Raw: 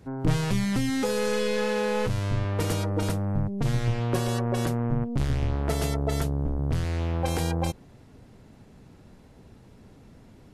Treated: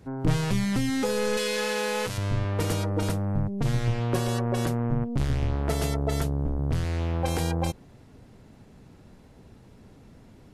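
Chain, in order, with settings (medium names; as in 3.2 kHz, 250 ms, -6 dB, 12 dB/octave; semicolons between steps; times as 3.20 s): 1.37–2.18 s: tilt EQ +2.5 dB/octave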